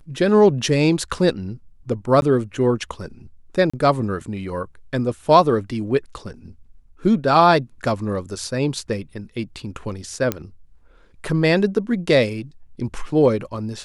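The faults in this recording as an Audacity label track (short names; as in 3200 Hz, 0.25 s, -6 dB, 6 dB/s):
2.210000	2.220000	gap 11 ms
3.700000	3.730000	gap 35 ms
10.320000	10.320000	pop -7 dBFS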